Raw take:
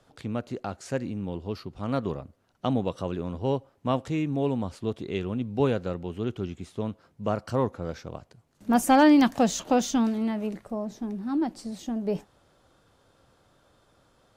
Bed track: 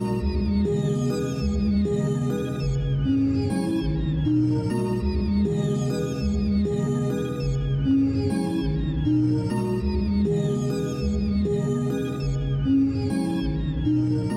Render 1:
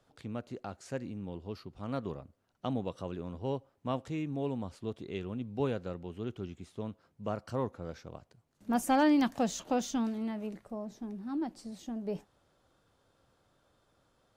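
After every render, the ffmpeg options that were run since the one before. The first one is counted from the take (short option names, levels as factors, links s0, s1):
-af "volume=0.398"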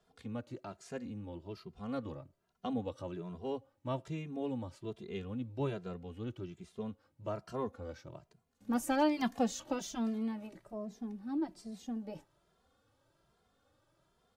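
-filter_complex "[0:a]asplit=2[s0][s1];[s1]adelay=2.5,afreqshift=1.2[s2];[s0][s2]amix=inputs=2:normalize=1"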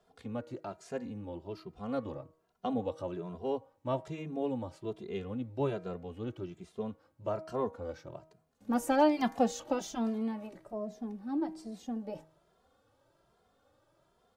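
-af "equalizer=f=620:t=o:w=2:g=6,bandreject=f=158.7:t=h:w=4,bandreject=f=317.4:t=h:w=4,bandreject=f=476.1:t=h:w=4,bandreject=f=634.8:t=h:w=4,bandreject=f=793.5:t=h:w=4,bandreject=f=952.2:t=h:w=4,bandreject=f=1110.9:t=h:w=4,bandreject=f=1269.6:t=h:w=4,bandreject=f=1428.3:t=h:w=4,bandreject=f=1587:t=h:w=4,bandreject=f=1745.7:t=h:w=4,bandreject=f=1904.4:t=h:w=4,bandreject=f=2063.1:t=h:w=4,bandreject=f=2221.8:t=h:w=4,bandreject=f=2380.5:t=h:w=4"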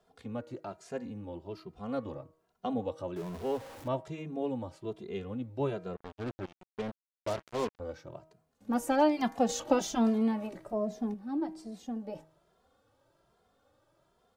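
-filter_complex "[0:a]asettb=1/sr,asplit=3[s0][s1][s2];[s0]atrim=end=3.164[s3];[s1]atrim=start=3.16:end=3.88,asetpts=PTS-STARTPTS,afade=t=in:d=0.004:c=qsin,afade=t=out:st=0.716:d=0.004:c=qsin,aeval=exprs='val(0)+0.5*0.0075*sgn(val(0))':c=same[s4];[s2]atrim=start=3.876[s5];[s3][s4]acrossfade=d=0.004:c1=hsin:c2=qsin[s6];[s6][s5]acrossfade=d=0.004:c1=qsin:c2=hsin,asettb=1/sr,asplit=3[s7][s8][s9];[s7]atrim=end=5.964[s10];[s8]atrim=start=5.96:end=7.8,asetpts=PTS-STARTPTS,afade=t=in:d=0.004:c=qsin,afade=t=out:st=1.836:d=0.004:c=qsin,acrusher=bits=5:mix=0:aa=0.5[s11];[s9]atrim=start=7.796[s12];[s10][s11]acrossfade=d=0.004:c1=hsin:c2=qsin[s13];[s13][s12]acrossfade=d=0.004:c1=qsin:c2=hsin,asplit=3[s14][s15][s16];[s14]atrim=end=9.492[s17];[s15]atrim=start=9.488:end=11.142,asetpts=PTS-STARTPTS,volume=2[s18];[s16]atrim=start=11.138[s19];[s17][s18]acrossfade=d=0.004:c1=hsin:c2=hsin[s20];[s20][s19]acrossfade=d=0.004:c1=hsin:c2=hsin"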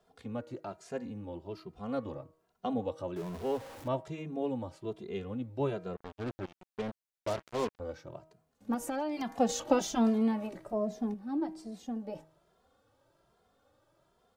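-filter_complex "[0:a]asettb=1/sr,asplit=3[s0][s1][s2];[s0]atrim=end=8.744[s3];[s1]atrim=start=8.74:end=9.31,asetpts=PTS-STARTPTS,afade=t=in:d=0.004:c=qsin,afade=t=out:st=0.566:d=0.004:c=qsin,acompressor=threshold=0.0316:ratio=10:attack=3.2:release=140:knee=1:detection=peak[s4];[s2]atrim=start=9.306[s5];[s3][s4]acrossfade=d=0.004:c1=hsin:c2=qsin[s6];[s6][s5]acrossfade=d=0.004:c1=qsin:c2=hsin"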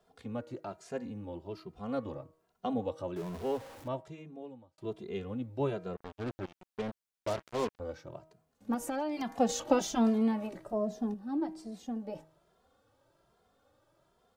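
-filter_complex "[0:a]asettb=1/sr,asplit=3[s0][s1][s2];[s0]atrim=end=10.634[s3];[s1]atrim=start=10.63:end=11.33,asetpts=PTS-STARTPTS,afade=t=in:d=0.004:c=qsin,afade=t=out:st=0.696:d=0.004:c=qsin,bandreject=f=2200:w=5.1[s4];[s2]atrim=start=11.326[s5];[s3][s4]acrossfade=d=0.004:c1=hsin:c2=qsin[s6];[s6][s5]acrossfade=d=0.004:c1=qsin:c2=hsin,asplit=2[s7][s8];[s7]atrim=end=4.78,asetpts=PTS-STARTPTS,afade=t=out:st=3.44:d=1.34[s9];[s8]atrim=start=4.78,asetpts=PTS-STARTPTS,afade=t=in:d=0.004:c=hsin[s10];[s9][s10]concat=n=2:v=0:a=1"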